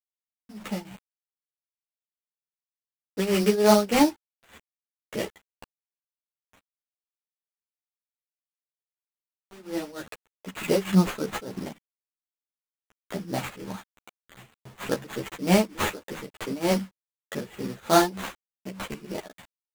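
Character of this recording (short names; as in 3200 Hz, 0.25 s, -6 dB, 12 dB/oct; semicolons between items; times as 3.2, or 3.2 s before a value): a quantiser's noise floor 8-bit, dither none; tremolo triangle 3.3 Hz, depth 90%; aliases and images of a low sample rate 5200 Hz, jitter 20%; a shimmering, thickened sound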